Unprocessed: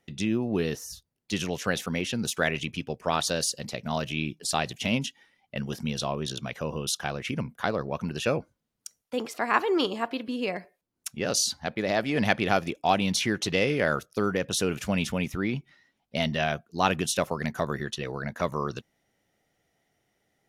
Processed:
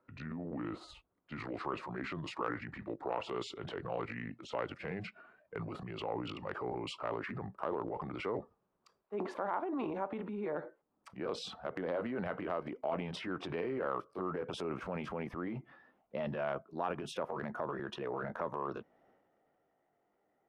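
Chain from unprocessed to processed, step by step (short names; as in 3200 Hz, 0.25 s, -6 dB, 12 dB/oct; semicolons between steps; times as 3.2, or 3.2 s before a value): gliding pitch shift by -6 st ending unshifted; resonant high shelf 1500 Hz -7.5 dB, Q 1.5; compressor 12:1, threshold -32 dBFS, peak gain reduction 16.5 dB; three-band isolator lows -14 dB, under 240 Hz, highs -23 dB, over 2700 Hz; transient shaper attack -4 dB, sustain +8 dB; gain +1.5 dB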